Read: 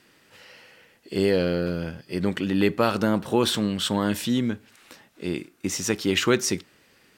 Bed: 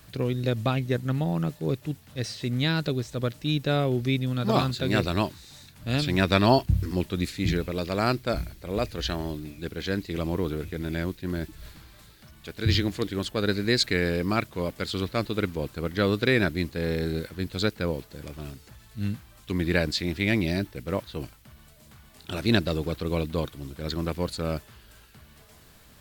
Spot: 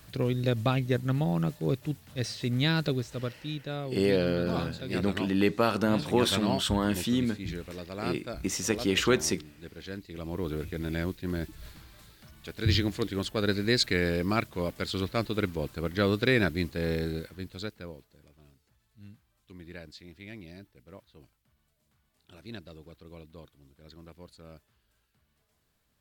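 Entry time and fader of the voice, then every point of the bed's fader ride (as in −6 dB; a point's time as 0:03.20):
2.80 s, −3.5 dB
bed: 0:02.90 −1 dB
0:03.60 −11 dB
0:10.14 −11 dB
0:10.57 −2 dB
0:16.95 −2 dB
0:18.32 −20.5 dB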